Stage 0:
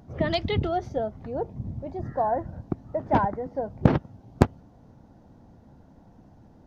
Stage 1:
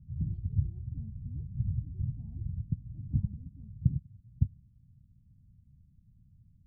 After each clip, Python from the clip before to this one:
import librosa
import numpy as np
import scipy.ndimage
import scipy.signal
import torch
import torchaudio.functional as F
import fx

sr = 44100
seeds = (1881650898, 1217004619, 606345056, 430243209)

y = scipy.signal.sosfilt(scipy.signal.cheby2(4, 60, 510.0, 'lowpass', fs=sr, output='sos'), x)
y = fx.rider(y, sr, range_db=4, speed_s=0.5)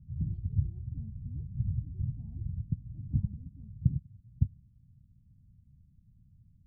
y = x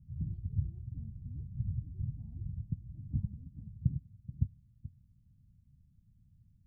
y = x + 10.0 ** (-14.5 / 20.0) * np.pad(x, (int(431 * sr / 1000.0), 0))[:len(x)]
y = F.gain(torch.from_numpy(y), -4.0).numpy()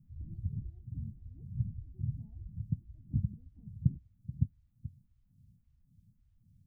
y = fx.stagger_phaser(x, sr, hz=1.8)
y = F.gain(torch.from_numpy(y), 3.5).numpy()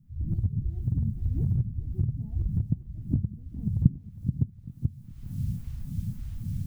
y = fx.recorder_agc(x, sr, target_db=-21.5, rise_db_per_s=47.0, max_gain_db=30)
y = fx.echo_feedback(y, sr, ms=409, feedback_pct=52, wet_db=-17.0)
y = F.gain(torch.from_numpy(y), 2.0).numpy()